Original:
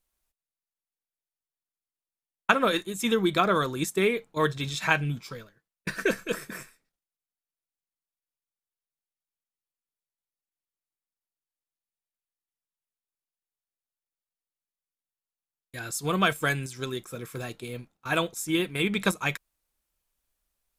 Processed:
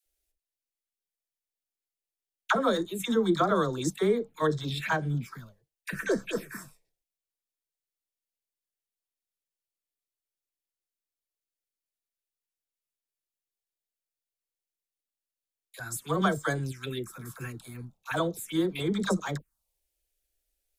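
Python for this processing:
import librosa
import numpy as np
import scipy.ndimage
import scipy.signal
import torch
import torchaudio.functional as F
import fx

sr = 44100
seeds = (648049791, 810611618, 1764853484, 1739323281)

y = fx.env_phaser(x, sr, low_hz=180.0, high_hz=2600.0, full_db=-25.0)
y = fx.dispersion(y, sr, late='lows', ms=61.0, hz=610.0)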